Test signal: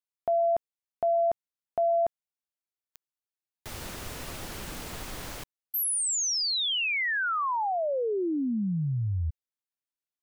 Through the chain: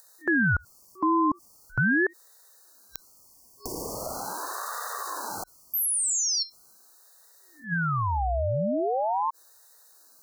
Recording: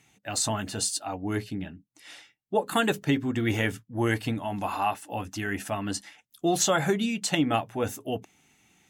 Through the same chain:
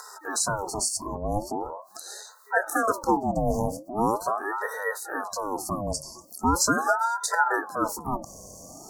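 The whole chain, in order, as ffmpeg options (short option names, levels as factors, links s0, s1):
-af "afftfilt=real='re*(1-between(b*sr/4096,760,4800))':imag='im*(1-between(b*sr/4096,760,4800))':win_size=4096:overlap=0.75,acompressor=mode=upward:threshold=0.0178:ratio=2.5:attack=15:release=24:knee=2.83:detection=peak,aeval=exprs='val(0)*sin(2*PI*770*n/s+770*0.55/0.41*sin(2*PI*0.41*n/s))':c=same,volume=1.78"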